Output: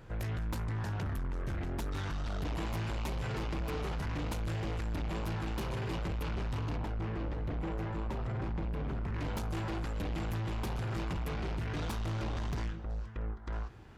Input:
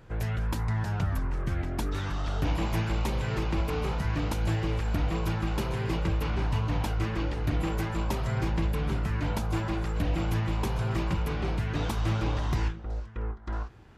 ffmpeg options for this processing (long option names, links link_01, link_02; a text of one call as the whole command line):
ffmpeg -i in.wav -filter_complex "[0:a]asoftclip=type=tanh:threshold=-32.5dB,asettb=1/sr,asplit=3[link_01][link_02][link_03];[link_01]atrim=end=6.764[link_04];[link_02]atrim=start=6.76:end=9.14,asetpts=PTS-STARTPTS,afade=type=in:duration=0.004:curve=qsin,afade=type=out:start_time=2.376:duration=0.004:curve=qsin,lowpass=frequency=1400:poles=1[link_05];[link_03]atrim=start=9.136[link_06];[link_04][link_05]acrossfade=duration=0.004:curve1=hsin:curve2=qsin[link_07];[link_07][link_06]acrossfade=duration=0.004:curve1=qsin:curve2=hsin" out.wav